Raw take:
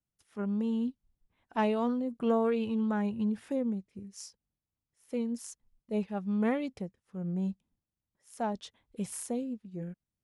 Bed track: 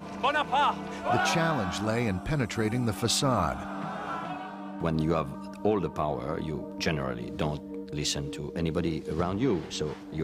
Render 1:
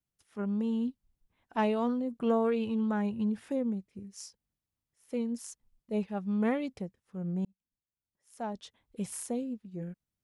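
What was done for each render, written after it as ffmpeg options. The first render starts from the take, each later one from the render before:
-filter_complex "[0:a]asplit=2[a][b];[a]atrim=end=7.45,asetpts=PTS-STARTPTS,afade=t=out:st=7.446:d=0.004:c=hsin[c];[b]atrim=start=7.45,asetpts=PTS-STARTPTS,afade=t=in:d=1.6[d];[c][d]concat=n=2:v=0:a=1"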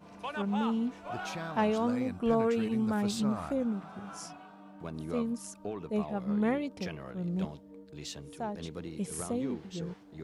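-filter_complex "[1:a]volume=-12.5dB[a];[0:a][a]amix=inputs=2:normalize=0"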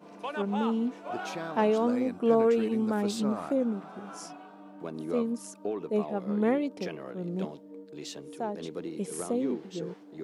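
-af "highpass=210,equalizer=f=370:w=0.84:g=7"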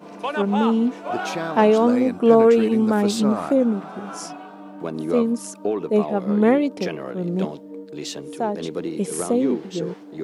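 -af "volume=9.5dB"

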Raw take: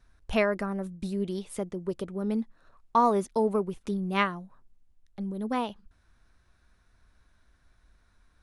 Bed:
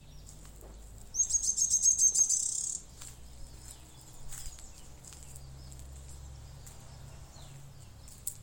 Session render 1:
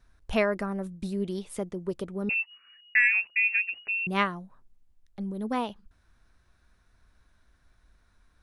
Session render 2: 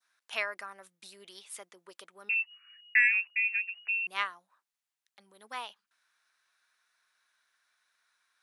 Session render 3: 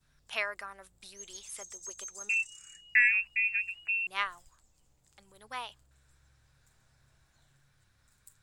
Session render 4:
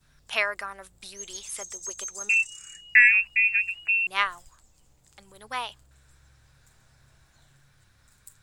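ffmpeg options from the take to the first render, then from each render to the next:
-filter_complex "[0:a]asettb=1/sr,asplit=3[a][b][c];[a]atrim=end=2.294[d];[b]atrim=start=2.29:end=4.07,asetpts=PTS-STARTPTS,afade=t=in:d=0.004:c=qsin,afade=t=out:st=1.776:d=0.004:c=qsin,lowpass=f=2.5k:t=q:w=0.5098,lowpass=f=2.5k:t=q:w=0.6013,lowpass=f=2.5k:t=q:w=0.9,lowpass=f=2.5k:t=q:w=2.563,afreqshift=-2900[e];[c]atrim=start=4.066[f];[d][e]acrossfade=d=0.004:c1=hsin:c2=qsin[g];[g][f]acrossfade=d=0.004:c1=qsin:c2=hsin"
-af "highpass=1.4k,adynamicequalizer=threshold=0.0126:dfrequency=2300:dqfactor=0.71:tfrequency=2300:tqfactor=0.71:attack=5:release=100:ratio=0.375:range=3.5:mode=cutabove:tftype=bell"
-filter_complex "[1:a]volume=-19dB[a];[0:a][a]amix=inputs=2:normalize=0"
-af "volume=7.5dB"

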